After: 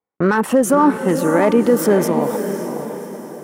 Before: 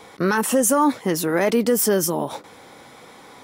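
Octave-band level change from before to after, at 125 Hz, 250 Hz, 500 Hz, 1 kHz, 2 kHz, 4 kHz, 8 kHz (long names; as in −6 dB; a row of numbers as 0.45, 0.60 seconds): +5.5, +6.0, +5.5, +4.5, +2.5, −4.0, −5.5 decibels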